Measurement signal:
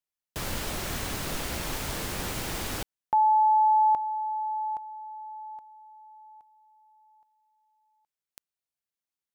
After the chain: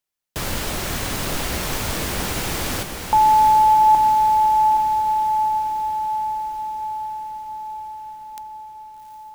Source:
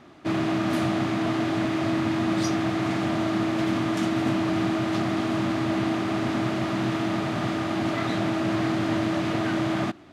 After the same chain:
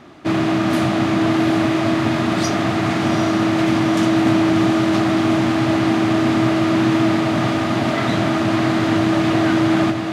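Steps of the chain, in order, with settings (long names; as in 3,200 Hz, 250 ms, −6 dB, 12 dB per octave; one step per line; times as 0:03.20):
feedback delay with all-pass diffusion 764 ms, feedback 62%, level −7 dB
level +7 dB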